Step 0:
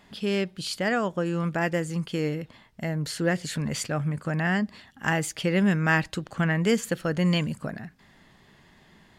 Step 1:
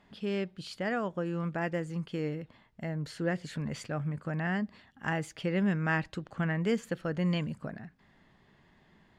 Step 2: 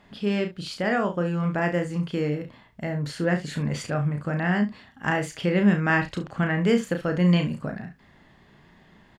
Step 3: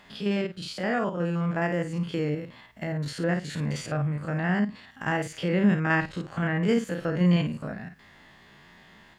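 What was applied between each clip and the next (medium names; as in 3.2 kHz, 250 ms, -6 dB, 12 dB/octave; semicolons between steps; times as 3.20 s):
low-pass 2.5 kHz 6 dB/octave; trim -6 dB
early reflections 34 ms -6 dB, 69 ms -14 dB; trim +7 dB
spectrogram pixelated in time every 50 ms; tape noise reduction on one side only encoder only; trim -1.5 dB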